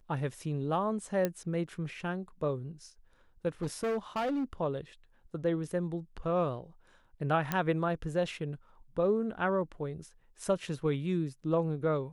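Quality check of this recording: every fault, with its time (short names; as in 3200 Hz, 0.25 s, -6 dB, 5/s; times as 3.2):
1.25 pop -16 dBFS
3.62–4.44 clipped -28.5 dBFS
7.52 pop -15 dBFS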